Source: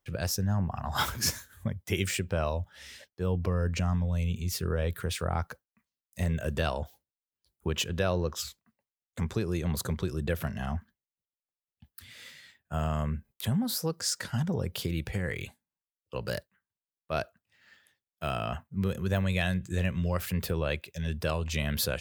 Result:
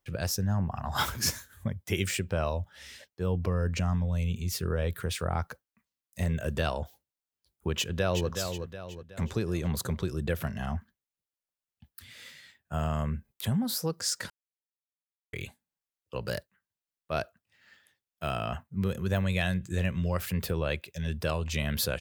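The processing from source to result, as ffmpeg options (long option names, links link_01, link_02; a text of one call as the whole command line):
ffmpeg -i in.wav -filter_complex "[0:a]asplit=2[link_01][link_02];[link_02]afade=type=in:start_time=7.76:duration=0.01,afade=type=out:start_time=8.29:duration=0.01,aecho=0:1:370|740|1110|1480|1850:0.446684|0.201008|0.0904534|0.040704|0.0183168[link_03];[link_01][link_03]amix=inputs=2:normalize=0,asplit=3[link_04][link_05][link_06];[link_04]atrim=end=14.3,asetpts=PTS-STARTPTS,afade=type=out:start_time=14.296:duration=0.004:curve=hsin[link_07];[link_05]atrim=start=14.3:end=15.33,asetpts=PTS-STARTPTS,volume=0[link_08];[link_06]atrim=start=15.33,asetpts=PTS-STARTPTS,afade=type=in:duration=0.004:curve=hsin[link_09];[link_07][link_08][link_09]concat=n=3:v=0:a=1" out.wav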